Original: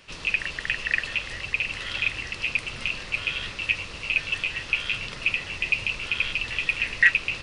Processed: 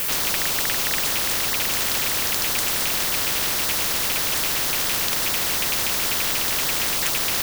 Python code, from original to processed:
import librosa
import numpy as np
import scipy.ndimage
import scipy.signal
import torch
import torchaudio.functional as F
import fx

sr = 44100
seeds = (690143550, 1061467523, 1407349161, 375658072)

y = fx.dmg_noise_colour(x, sr, seeds[0], colour='violet', level_db=-45.0)
y = fx.spectral_comp(y, sr, ratio=10.0)
y = y * librosa.db_to_amplitude(-1.5)